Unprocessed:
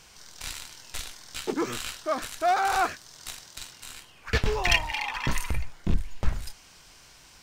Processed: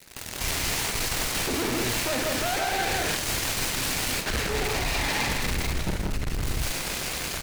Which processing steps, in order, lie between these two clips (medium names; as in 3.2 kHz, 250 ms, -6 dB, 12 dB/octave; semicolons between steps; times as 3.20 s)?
comb filter that takes the minimum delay 0.44 ms; level rider gain up to 6.5 dB; fuzz box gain 41 dB, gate -49 dBFS; doubling 47 ms -11.5 dB; on a send: loudspeakers at several distances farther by 20 m -10 dB, 56 m -2 dB, 67 m -5 dB; on the sum: reverse; compression, threshold -18 dBFS, peak gain reduction 10.5 dB; reverse; delay time shaken by noise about 1.6 kHz, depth 0.057 ms; trim -6 dB